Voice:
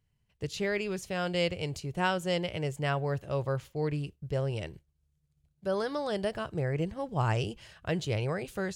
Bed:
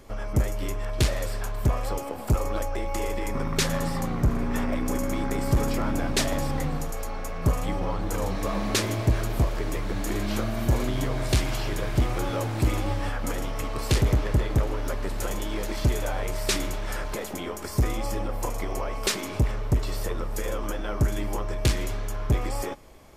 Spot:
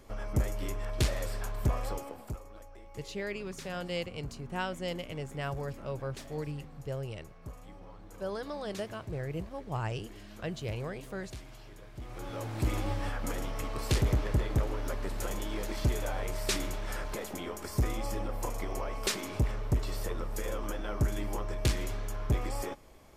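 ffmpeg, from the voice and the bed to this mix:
-filter_complex "[0:a]adelay=2550,volume=0.501[s0];[1:a]volume=3.55,afade=t=out:st=1.84:d=0.57:silence=0.149624,afade=t=in:st=11.99:d=0.79:silence=0.149624[s1];[s0][s1]amix=inputs=2:normalize=0"

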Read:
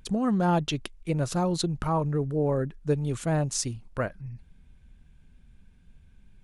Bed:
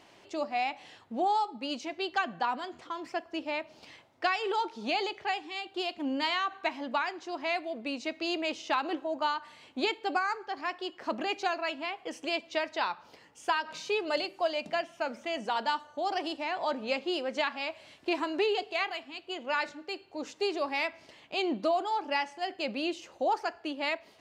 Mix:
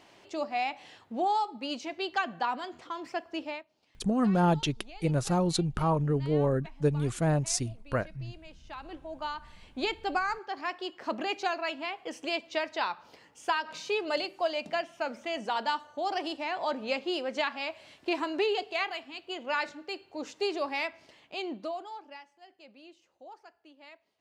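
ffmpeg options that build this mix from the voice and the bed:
-filter_complex "[0:a]adelay=3950,volume=0.944[s0];[1:a]volume=8.91,afade=t=out:st=3.44:d=0.21:silence=0.112202,afade=t=in:st=8.61:d=1.49:silence=0.112202,afade=t=out:st=20.56:d=1.68:silence=0.0944061[s1];[s0][s1]amix=inputs=2:normalize=0"

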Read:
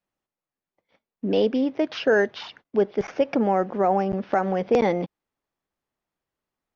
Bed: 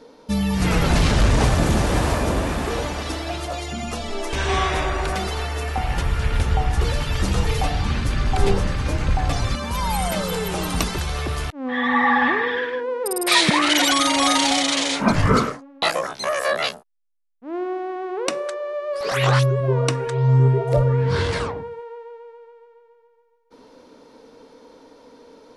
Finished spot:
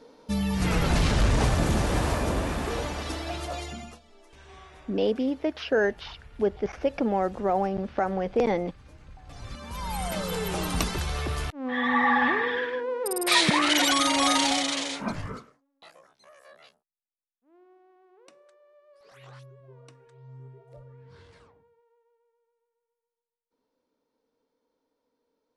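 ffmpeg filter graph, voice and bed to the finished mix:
-filter_complex "[0:a]adelay=3650,volume=0.631[s0];[1:a]volume=7.94,afade=t=out:st=3.6:d=0.4:silence=0.0749894,afade=t=in:st=9.25:d=1.25:silence=0.0668344,afade=t=out:st=14.41:d=1.02:silence=0.0473151[s1];[s0][s1]amix=inputs=2:normalize=0"

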